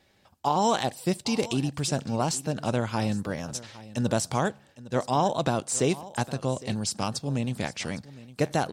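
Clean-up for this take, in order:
echo removal 809 ms −18 dB

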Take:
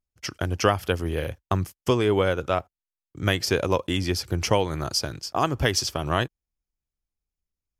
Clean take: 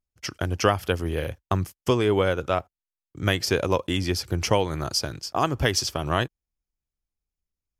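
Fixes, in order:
no processing needed

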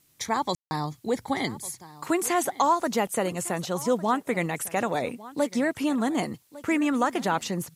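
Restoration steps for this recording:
ambience match 0:00.55–0:00.71
downward expander −44 dBFS, range −21 dB
echo removal 1,153 ms −18.5 dB

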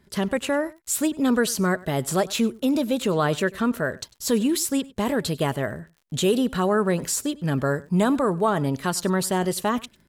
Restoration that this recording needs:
click removal
echo removal 98 ms −22 dB

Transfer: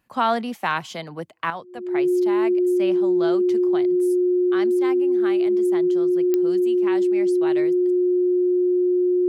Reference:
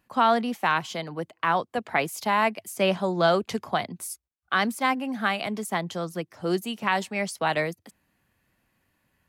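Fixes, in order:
click removal
notch filter 360 Hz, Q 30
level 0 dB, from 0:01.50 +9 dB

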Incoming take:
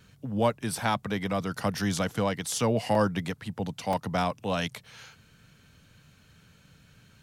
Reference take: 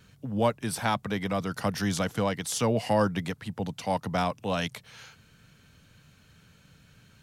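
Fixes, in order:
repair the gap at 0:02.95/0:03.93, 2.6 ms

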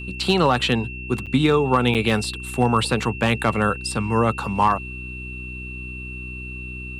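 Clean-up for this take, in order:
clipped peaks rebuilt −8.5 dBFS
hum removal 62.5 Hz, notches 6
notch filter 2,700 Hz, Q 30
repair the gap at 0:01.26/0:01.94, 7.7 ms

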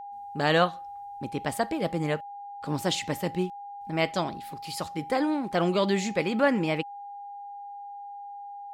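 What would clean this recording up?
notch filter 810 Hz, Q 30

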